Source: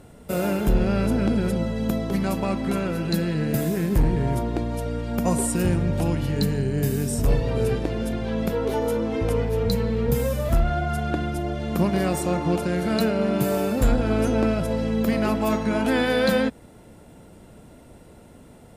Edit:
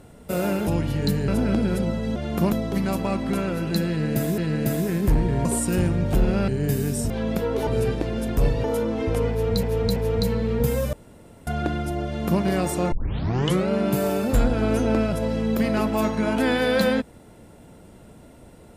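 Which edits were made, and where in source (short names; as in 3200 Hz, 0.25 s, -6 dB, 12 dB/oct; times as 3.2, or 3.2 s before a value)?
0.67–1.01 swap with 6.01–6.62
3.26–3.76 loop, 2 plays
4.33–5.32 cut
7.24–7.51 swap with 8.21–8.78
9.44–9.77 loop, 3 plays
10.41–10.95 room tone
11.54–11.89 copy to 1.89
12.4 tape start 0.77 s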